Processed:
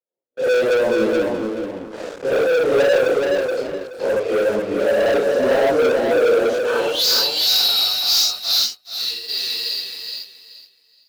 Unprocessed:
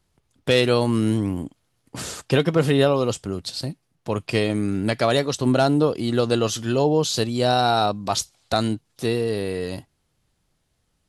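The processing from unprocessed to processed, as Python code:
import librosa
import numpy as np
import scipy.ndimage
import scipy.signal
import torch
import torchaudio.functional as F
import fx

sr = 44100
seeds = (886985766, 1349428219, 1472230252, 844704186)

y = fx.phase_scramble(x, sr, seeds[0], window_ms=200)
y = fx.highpass(y, sr, hz=180.0, slope=6)
y = fx.filter_sweep_bandpass(y, sr, from_hz=520.0, to_hz=4800.0, start_s=6.52, end_s=7.06, q=6.0)
y = scipy.signal.sosfilt(scipy.signal.butter(2, 6700.0, 'lowpass', fs=sr, output='sos'), y)
y = fx.high_shelf(y, sr, hz=2000.0, db=8.5)
y = fx.leveller(y, sr, passes=5)
y = fx.echo_feedback(y, sr, ms=425, feedback_pct=23, wet_db=-4.0)
y = fx.upward_expand(y, sr, threshold_db=-42.0, expansion=1.5, at=(8.64, 9.28), fade=0.02)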